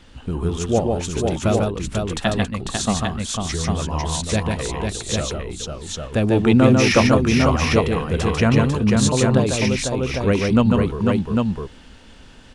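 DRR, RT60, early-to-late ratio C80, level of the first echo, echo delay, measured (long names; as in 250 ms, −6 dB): no reverb audible, no reverb audible, no reverb audible, −3.5 dB, 146 ms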